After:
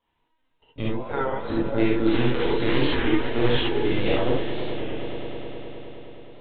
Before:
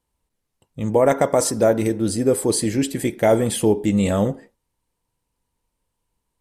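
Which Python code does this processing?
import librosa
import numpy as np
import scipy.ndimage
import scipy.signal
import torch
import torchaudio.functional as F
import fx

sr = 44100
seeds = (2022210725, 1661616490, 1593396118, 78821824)

y = fx.delta_hold(x, sr, step_db=-26.0, at=(2.08, 3.68))
y = fx.low_shelf(y, sr, hz=370.0, db=-10.5)
y = fx.over_compress(y, sr, threshold_db=-27.0, ratio=-0.5)
y = fx.chorus_voices(y, sr, voices=6, hz=0.83, base_ms=18, depth_ms=1.7, mix_pct=35)
y = fx.lpc_vocoder(y, sr, seeds[0], excitation='pitch_kept', order=16)
y = fx.echo_swell(y, sr, ms=104, loudest=5, wet_db=-15.5)
y = fx.rev_gated(y, sr, seeds[1], gate_ms=90, shape='rising', drr_db=-4.0)
y = fx.record_warp(y, sr, rpm=33.33, depth_cents=100.0)
y = y * 10.0 ** (2.0 / 20.0)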